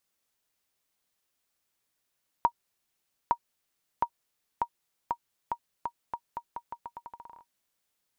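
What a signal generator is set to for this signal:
bouncing ball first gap 0.86 s, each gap 0.83, 945 Hz, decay 70 ms −11.5 dBFS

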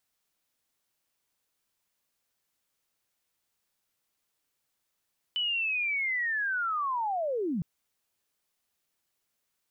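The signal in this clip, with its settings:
glide linear 3,000 Hz → 150 Hz −26.5 dBFS → −27.5 dBFS 2.26 s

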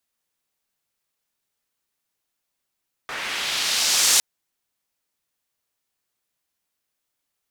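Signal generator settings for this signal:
filter sweep on noise pink, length 1.11 s bandpass, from 1,500 Hz, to 6,800 Hz, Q 1.2, linear, gain ramp +16 dB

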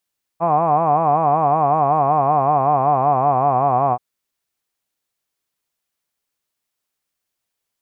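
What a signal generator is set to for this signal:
vowel by formant synthesis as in hod, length 3.58 s, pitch 160 Hz, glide −3.5 semitones, vibrato depth 1.3 semitones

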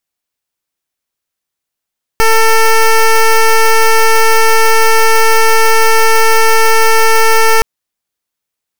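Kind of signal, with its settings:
pulse wave 447 Hz, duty 12% −6.5 dBFS 5.42 s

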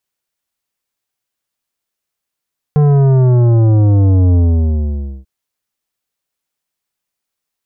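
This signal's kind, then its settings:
bass drop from 150 Hz, over 2.49 s, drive 11.5 dB, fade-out 0.90 s, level −8 dB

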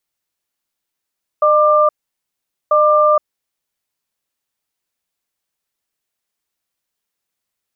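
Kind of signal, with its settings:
tone pair in a cadence 606 Hz, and 1,190 Hz, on 0.47 s, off 0.82 s, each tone −11.5 dBFS 2.40 s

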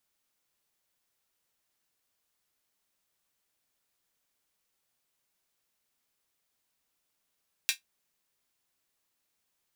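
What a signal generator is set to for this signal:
closed synth hi-hat, high-pass 2,400 Hz, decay 0.13 s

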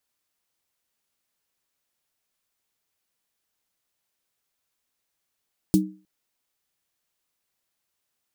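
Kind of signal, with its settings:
synth snare length 0.31 s, tones 190 Hz, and 310 Hz, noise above 3,700 Hz, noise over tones −11 dB, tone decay 0.35 s, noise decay 0.11 s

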